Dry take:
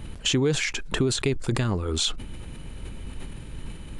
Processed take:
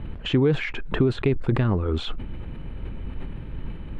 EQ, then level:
high-frequency loss of the air 500 metres
+4.0 dB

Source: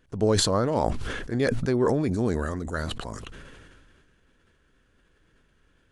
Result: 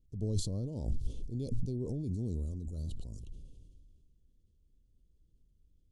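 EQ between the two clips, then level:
Butterworth band-reject 1,700 Hz, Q 0.54
guitar amp tone stack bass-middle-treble 10-0-1
+5.5 dB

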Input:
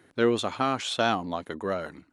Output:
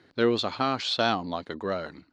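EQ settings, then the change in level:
high-frequency loss of the air 160 metres
parametric band 4,500 Hz +13.5 dB 0.49 octaves
high-shelf EQ 7,700 Hz +9.5 dB
0.0 dB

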